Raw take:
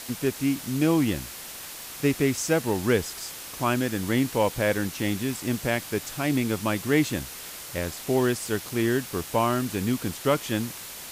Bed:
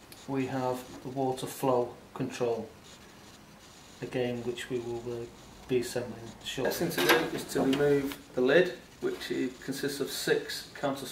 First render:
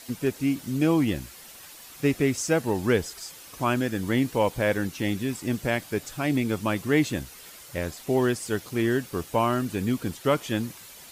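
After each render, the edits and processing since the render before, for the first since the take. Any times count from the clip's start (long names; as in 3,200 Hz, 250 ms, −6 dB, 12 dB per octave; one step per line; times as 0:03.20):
broadband denoise 9 dB, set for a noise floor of −40 dBFS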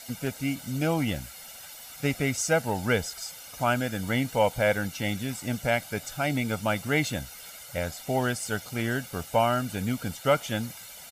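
low-shelf EQ 240 Hz −5 dB
comb filter 1.4 ms, depth 66%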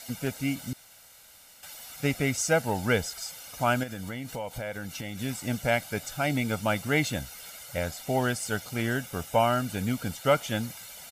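0:00.73–0:01.63: fill with room tone
0:03.83–0:05.19: downward compressor 5 to 1, threshold −32 dBFS
0:08.93–0:09.45: notch filter 4,400 Hz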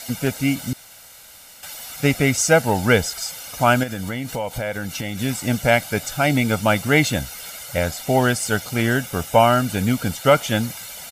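level +9 dB
brickwall limiter −2 dBFS, peak gain reduction 1.5 dB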